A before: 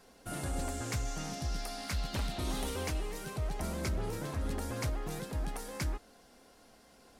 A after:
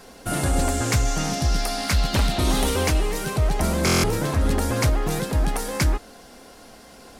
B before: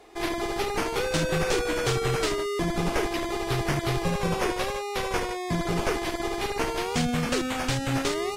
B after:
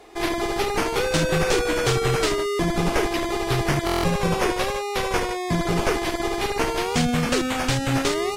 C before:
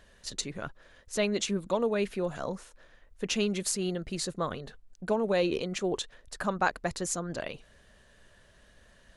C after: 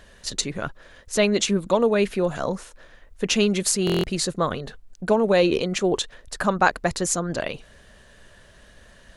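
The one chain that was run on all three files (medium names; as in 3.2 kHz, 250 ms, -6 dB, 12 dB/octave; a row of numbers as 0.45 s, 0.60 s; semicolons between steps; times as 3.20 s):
buffer glitch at 3.85 s, samples 1024, times 7; normalise loudness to -23 LUFS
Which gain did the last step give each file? +14.5 dB, +4.5 dB, +8.5 dB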